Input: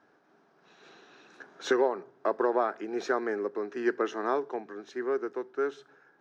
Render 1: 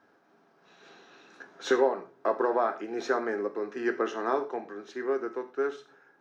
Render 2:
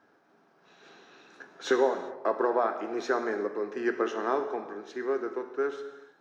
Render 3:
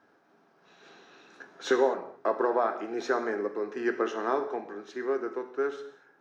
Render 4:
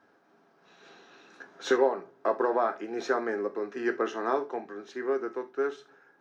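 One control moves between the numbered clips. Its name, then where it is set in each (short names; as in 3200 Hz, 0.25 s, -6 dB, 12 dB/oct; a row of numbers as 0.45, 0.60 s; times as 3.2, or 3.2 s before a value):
non-linear reverb, gate: 0.14, 0.43, 0.27, 0.1 s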